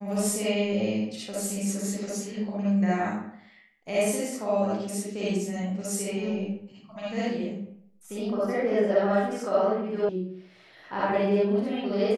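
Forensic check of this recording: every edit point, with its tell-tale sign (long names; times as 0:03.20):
0:10.09: cut off before it has died away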